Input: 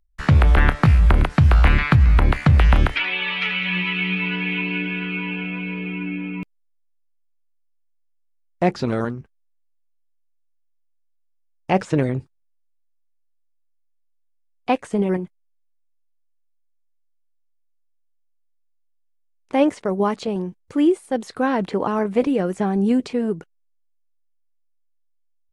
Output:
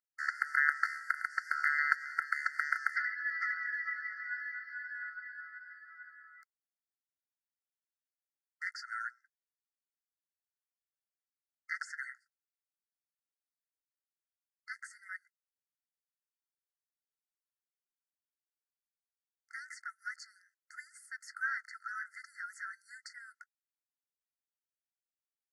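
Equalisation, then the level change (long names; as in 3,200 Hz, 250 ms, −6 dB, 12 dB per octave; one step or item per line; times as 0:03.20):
linear-phase brick-wall high-pass 1,300 Hz
linear-phase brick-wall band-stop 2,100–4,300 Hz
high-shelf EQ 2,500 Hz −10.5 dB
0.0 dB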